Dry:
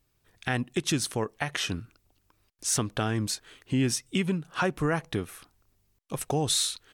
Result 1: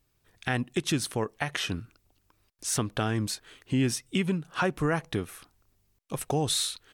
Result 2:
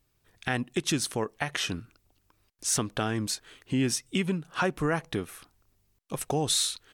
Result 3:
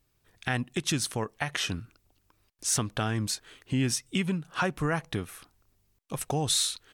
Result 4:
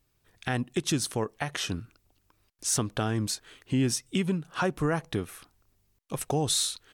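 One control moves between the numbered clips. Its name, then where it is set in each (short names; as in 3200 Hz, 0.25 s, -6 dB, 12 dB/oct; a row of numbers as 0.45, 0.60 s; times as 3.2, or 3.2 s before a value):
dynamic EQ, frequency: 6500, 100, 380, 2200 Hz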